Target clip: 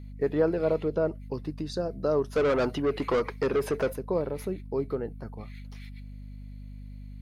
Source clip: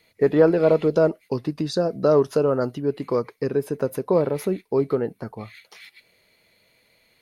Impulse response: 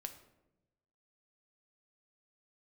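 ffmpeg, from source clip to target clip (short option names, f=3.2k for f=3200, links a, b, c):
-filter_complex "[0:a]asettb=1/sr,asplit=3[a][b][c];[a]atrim=end=0.834[d];[b]atrim=start=0.83:end=1.34,asetpts=PTS-STARTPTS,afade=t=in:d=0.004:c=qsin,afade=t=out:st=0.506:d=0.004:c=qsin,acrossover=split=3500[e][f];[f]acompressor=threshold=-58dB:ratio=4:attack=1:release=60[g];[e][g]amix=inputs=2:normalize=0[h];[c]atrim=start=1.336[i];[d][h]acrossfade=d=0.004:c1=hsin:c2=qsin[j];[j][i]acrossfade=d=0.004:c1=qsin:c2=hsin,asplit=3[k][l][m];[k]afade=t=out:st=2.35:d=0.02[n];[l]asplit=2[o][p];[p]highpass=f=720:p=1,volume=25dB,asoftclip=type=tanh:threshold=-8.5dB[q];[o][q]amix=inputs=2:normalize=0,lowpass=f=3.1k:p=1,volume=-6dB,afade=t=in:st=2.35:d=0.02,afade=t=out:st=3.92:d=0.02[r];[m]afade=t=in:st=3.92:d=0.02[s];[n][r][s]amix=inputs=3:normalize=0,aeval=exprs='val(0)+0.0251*(sin(2*PI*50*n/s)+sin(2*PI*2*50*n/s)/2+sin(2*PI*3*50*n/s)/3+sin(2*PI*4*50*n/s)/4+sin(2*PI*5*50*n/s)/5)':c=same,volume=-8.5dB"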